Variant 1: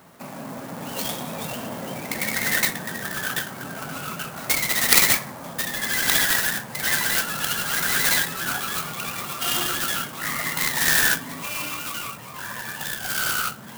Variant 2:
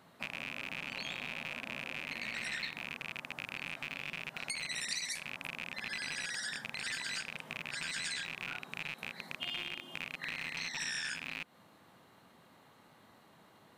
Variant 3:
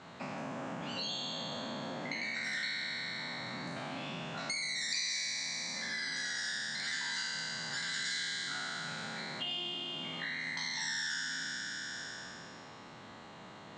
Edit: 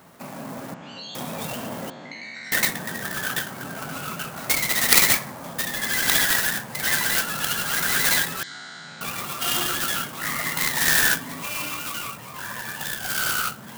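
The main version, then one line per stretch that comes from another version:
1
0.74–1.15 s: from 3
1.90–2.52 s: from 3
8.43–9.01 s: from 3
not used: 2

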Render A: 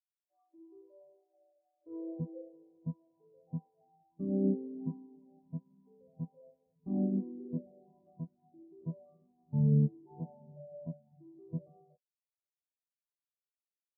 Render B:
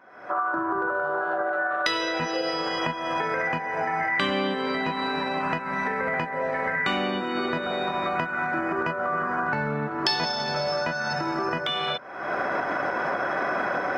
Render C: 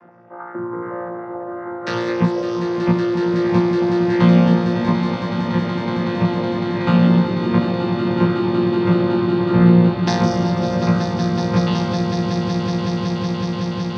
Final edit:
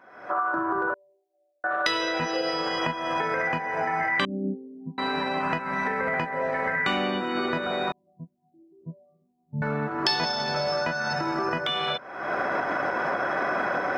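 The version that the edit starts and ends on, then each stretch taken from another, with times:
B
0.94–1.64 s: from A
4.25–4.98 s: from A
7.92–9.62 s: from A
not used: C

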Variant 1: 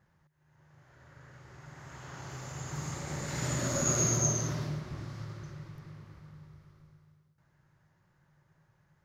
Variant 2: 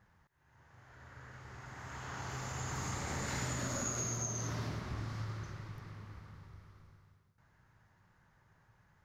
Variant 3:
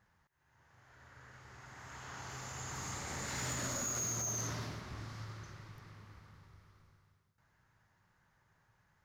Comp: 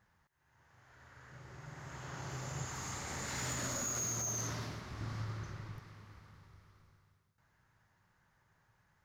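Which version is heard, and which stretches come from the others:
3
1.32–2.65 s: from 1
5.01–5.79 s: from 2

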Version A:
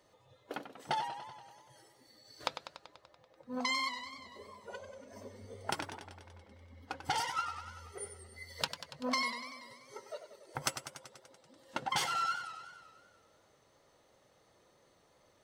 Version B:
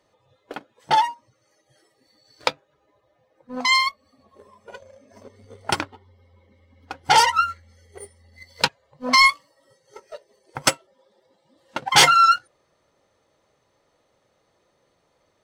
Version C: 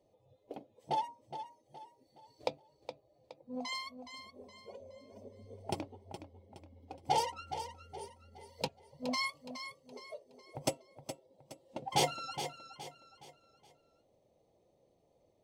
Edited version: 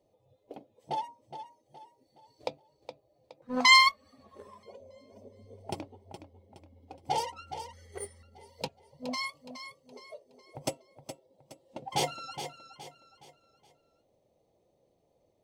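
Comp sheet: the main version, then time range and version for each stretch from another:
C
3.42–4.63 s: from B
7.73–8.23 s: from B
not used: A

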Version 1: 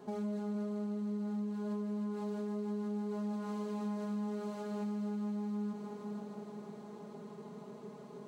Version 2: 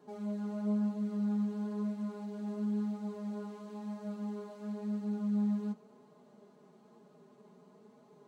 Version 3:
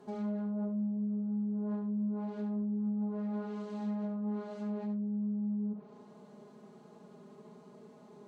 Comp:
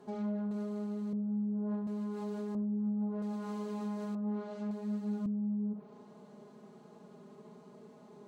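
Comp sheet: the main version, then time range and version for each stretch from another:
3
0.51–1.13 s: from 1
1.87–2.55 s: from 1
3.22–4.15 s: from 1
4.71–5.26 s: from 2

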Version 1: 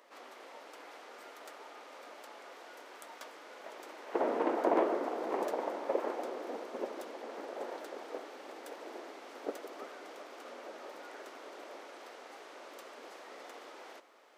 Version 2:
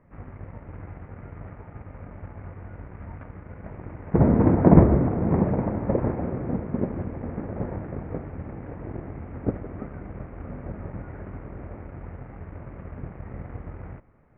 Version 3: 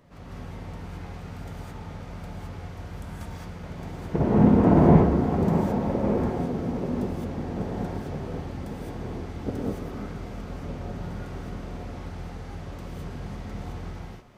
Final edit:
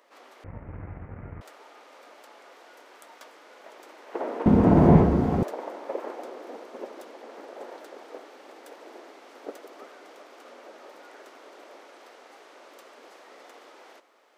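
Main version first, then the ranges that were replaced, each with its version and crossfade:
1
0.44–1.41 s: from 2
4.46–5.43 s: from 3

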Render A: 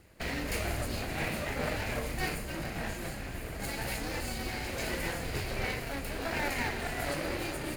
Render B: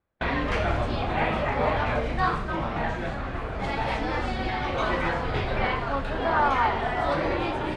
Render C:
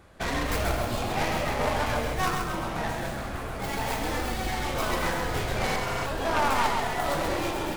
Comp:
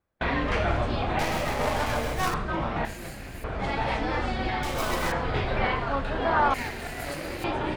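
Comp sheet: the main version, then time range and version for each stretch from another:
B
1.19–2.34 s: from C
2.85–3.44 s: from A
4.63–5.12 s: from C
6.54–7.44 s: from A

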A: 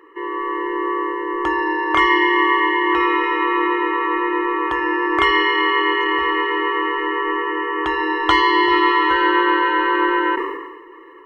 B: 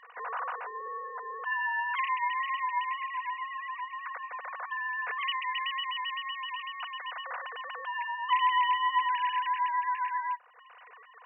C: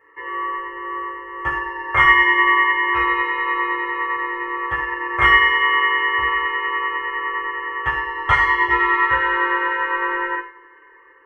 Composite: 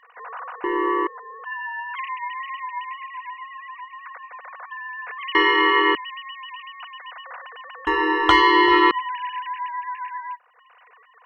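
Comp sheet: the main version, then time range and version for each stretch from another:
B
0.64–1.07 s: from A
5.35–5.95 s: from A
7.87–8.91 s: from A
not used: C

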